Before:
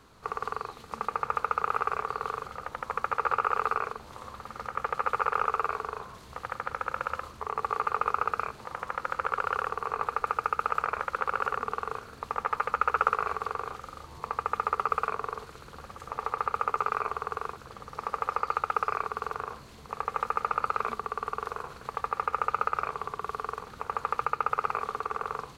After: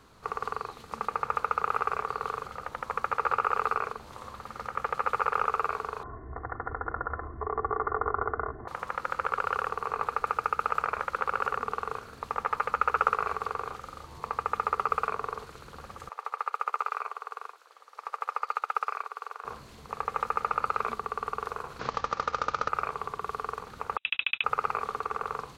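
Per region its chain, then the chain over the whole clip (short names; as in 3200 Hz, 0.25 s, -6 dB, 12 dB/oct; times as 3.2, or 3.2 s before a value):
6.03–8.68 brick-wall FIR low-pass 2100 Hz + tilt shelf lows +7 dB, about 750 Hz + comb 2.8 ms, depth 85%
16.09–19.45 Bessel high-pass 680 Hz, order 6 + upward expander, over -42 dBFS
21.79–22.69 CVSD 32 kbps + three-band squash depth 70%
23.97–24.44 gate -36 dBFS, range -36 dB + inverted band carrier 3800 Hz
whole clip: dry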